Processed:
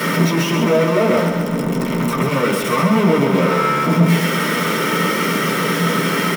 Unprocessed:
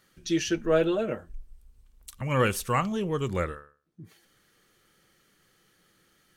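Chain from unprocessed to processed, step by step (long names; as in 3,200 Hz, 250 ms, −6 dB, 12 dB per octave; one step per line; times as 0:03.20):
sign of each sample alone
low shelf with overshoot 120 Hz −12.5 dB, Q 3
notch filter 1,700 Hz, Q 8.2
repeating echo 132 ms, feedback 48%, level −6 dB
convolution reverb RT60 0.20 s, pre-delay 3 ms, DRR −2.5 dB
0:01.17–0:02.29: multiband upward and downward compressor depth 100%
level +1.5 dB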